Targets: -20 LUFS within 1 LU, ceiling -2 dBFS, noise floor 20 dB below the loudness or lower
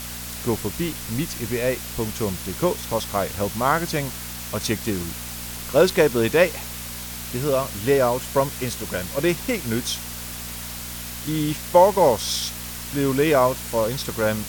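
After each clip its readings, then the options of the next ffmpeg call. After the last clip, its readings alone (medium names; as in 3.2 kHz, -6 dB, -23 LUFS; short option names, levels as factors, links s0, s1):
hum 60 Hz; highest harmonic 240 Hz; hum level -36 dBFS; noise floor -34 dBFS; noise floor target -43 dBFS; loudness -23.0 LUFS; peak level -3.0 dBFS; loudness target -20.0 LUFS
-> -af "bandreject=f=60:t=h:w=4,bandreject=f=120:t=h:w=4,bandreject=f=180:t=h:w=4,bandreject=f=240:t=h:w=4"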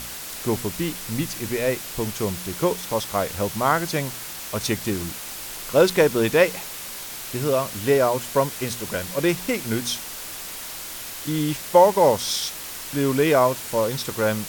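hum not found; noise floor -35 dBFS; noise floor target -43 dBFS
-> -af "afftdn=nr=8:nf=-35"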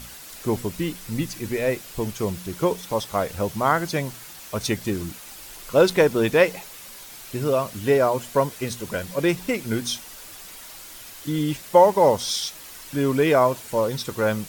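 noise floor -42 dBFS; noise floor target -43 dBFS
-> -af "afftdn=nr=6:nf=-42"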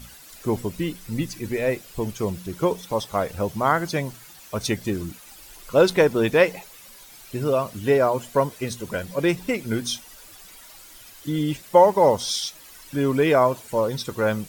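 noise floor -46 dBFS; loudness -23.0 LUFS; peak level -3.0 dBFS; loudness target -20.0 LUFS
-> -af "volume=1.41,alimiter=limit=0.794:level=0:latency=1"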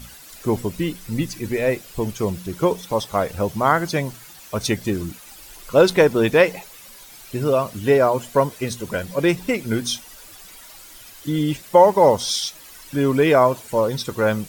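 loudness -20.5 LUFS; peak level -2.0 dBFS; noise floor -43 dBFS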